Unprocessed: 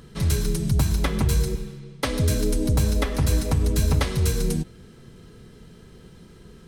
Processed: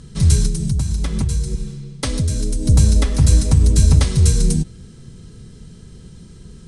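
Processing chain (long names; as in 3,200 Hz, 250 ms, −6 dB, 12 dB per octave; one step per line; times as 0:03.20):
Butterworth low-pass 10,000 Hz 48 dB per octave
bass and treble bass +11 dB, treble +12 dB
0:00.46–0:02.67: downward compressor 5 to 1, threshold −15 dBFS, peak gain reduction 9 dB
level −1.5 dB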